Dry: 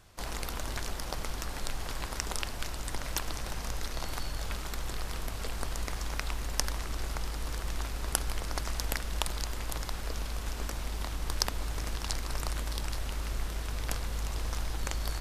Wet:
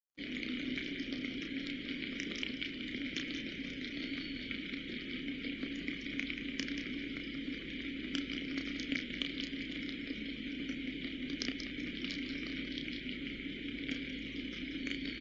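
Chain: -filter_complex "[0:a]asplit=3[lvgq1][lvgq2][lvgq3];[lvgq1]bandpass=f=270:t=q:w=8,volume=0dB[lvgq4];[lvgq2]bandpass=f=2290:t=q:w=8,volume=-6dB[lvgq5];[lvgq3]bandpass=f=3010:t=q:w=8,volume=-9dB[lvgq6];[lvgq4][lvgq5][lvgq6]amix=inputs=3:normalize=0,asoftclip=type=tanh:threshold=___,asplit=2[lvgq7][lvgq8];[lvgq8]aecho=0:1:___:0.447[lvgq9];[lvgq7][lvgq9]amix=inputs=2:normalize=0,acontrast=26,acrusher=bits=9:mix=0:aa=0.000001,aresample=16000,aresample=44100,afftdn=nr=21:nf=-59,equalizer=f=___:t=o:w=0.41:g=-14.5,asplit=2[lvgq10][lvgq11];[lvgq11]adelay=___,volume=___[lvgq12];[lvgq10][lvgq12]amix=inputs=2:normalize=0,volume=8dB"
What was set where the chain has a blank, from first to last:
-33.5dB, 183, 73, 32, -6dB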